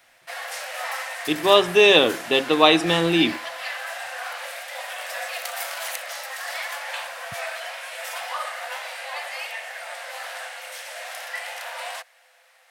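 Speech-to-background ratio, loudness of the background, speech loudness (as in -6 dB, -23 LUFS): 14.0 dB, -31.5 LUFS, -17.5 LUFS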